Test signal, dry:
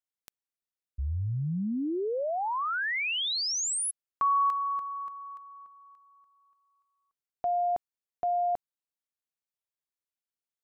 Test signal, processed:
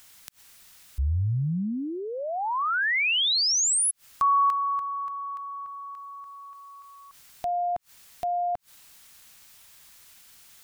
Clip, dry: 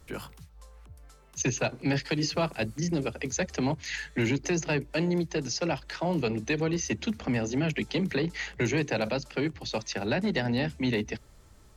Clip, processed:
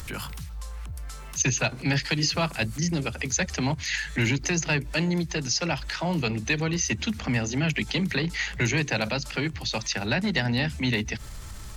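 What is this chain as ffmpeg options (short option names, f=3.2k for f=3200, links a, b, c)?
-af "acompressor=mode=upward:threshold=-32dB:ratio=2.5:attack=0.68:release=72:knee=2.83:detection=peak,equalizer=f=420:t=o:w=2:g=-10,volume=7dB"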